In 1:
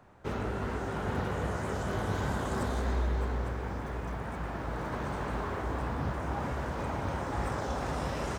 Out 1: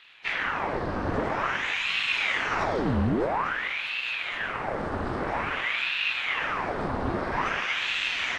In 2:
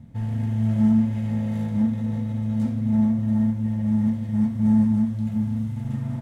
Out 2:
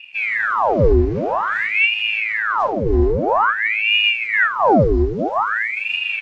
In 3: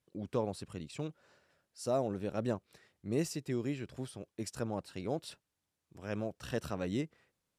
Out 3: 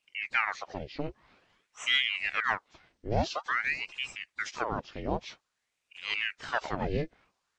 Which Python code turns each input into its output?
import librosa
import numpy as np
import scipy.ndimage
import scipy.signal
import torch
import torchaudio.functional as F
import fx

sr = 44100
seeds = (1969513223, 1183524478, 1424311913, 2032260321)

y = fx.freq_compress(x, sr, knee_hz=1600.0, ratio=1.5)
y = fx.ring_lfo(y, sr, carrier_hz=1400.0, swing_pct=90, hz=0.5)
y = y * 10.0 ** (7.5 / 20.0)